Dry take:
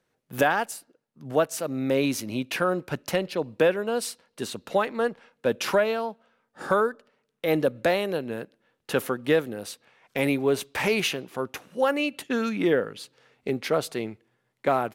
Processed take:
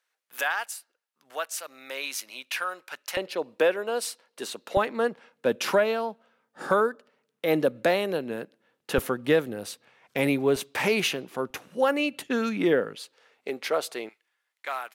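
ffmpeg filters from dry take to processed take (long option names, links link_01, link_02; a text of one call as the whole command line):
ffmpeg -i in.wav -af "asetnsamples=nb_out_samples=441:pad=0,asendcmd='3.17 highpass f 390;4.77 highpass f 150;8.98 highpass f 57;10.56 highpass f 130;11.5 highpass f 59;12.27 highpass f 140;12.95 highpass f 450;14.09 highpass f 1400',highpass=1200" out.wav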